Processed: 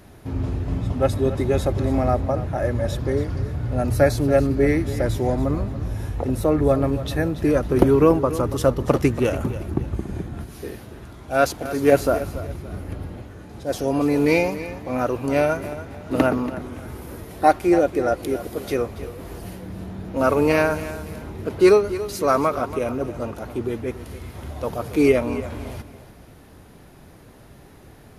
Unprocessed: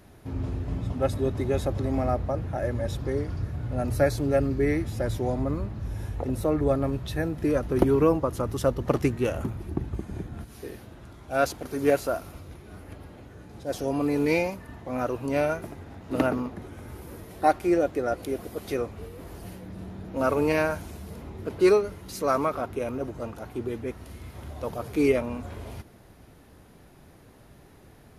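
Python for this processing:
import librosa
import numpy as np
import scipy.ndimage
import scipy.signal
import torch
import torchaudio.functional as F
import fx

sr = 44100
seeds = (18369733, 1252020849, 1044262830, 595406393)

p1 = fx.low_shelf(x, sr, hz=350.0, db=7.5, at=(11.92, 13.22))
p2 = p1 + fx.echo_feedback(p1, sr, ms=283, feedback_pct=32, wet_db=-14.0, dry=0)
y = p2 * librosa.db_to_amplitude(5.5)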